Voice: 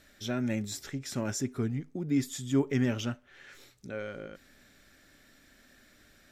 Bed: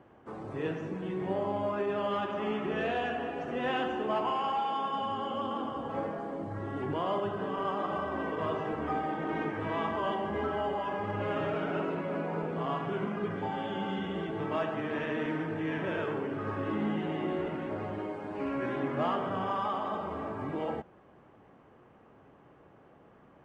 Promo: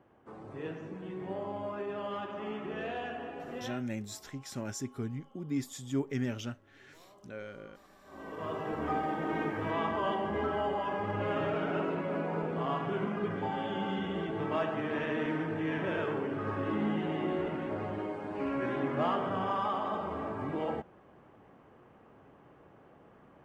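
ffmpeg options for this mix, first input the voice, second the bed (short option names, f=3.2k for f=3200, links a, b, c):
-filter_complex "[0:a]adelay=3400,volume=-5.5dB[a];[1:a]volume=22.5dB,afade=t=out:st=3.54:d=0.29:silence=0.0749894,afade=t=in:st=8.03:d=0.83:silence=0.0375837[b];[a][b]amix=inputs=2:normalize=0"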